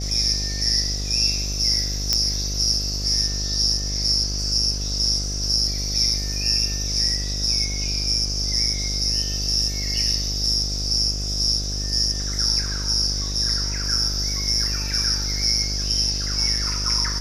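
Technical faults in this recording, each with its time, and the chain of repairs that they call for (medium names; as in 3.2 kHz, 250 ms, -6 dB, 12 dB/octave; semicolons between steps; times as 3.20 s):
buzz 50 Hz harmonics 15 -28 dBFS
2.13 s: pop -5 dBFS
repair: de-click; de-hum 50 Hz, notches 15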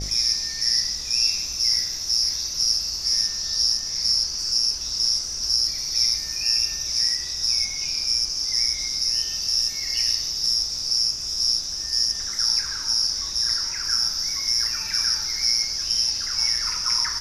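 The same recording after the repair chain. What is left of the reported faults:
nothing left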